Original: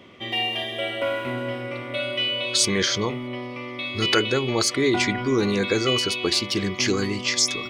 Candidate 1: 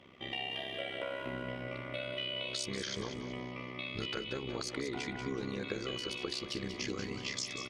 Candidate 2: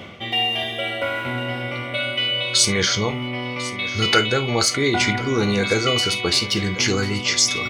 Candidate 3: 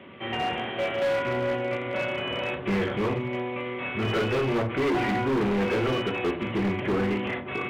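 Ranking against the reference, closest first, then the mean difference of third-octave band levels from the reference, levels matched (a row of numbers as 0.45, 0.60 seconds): 2, 1, 3; 3.0, 4.5, 7.0 decibels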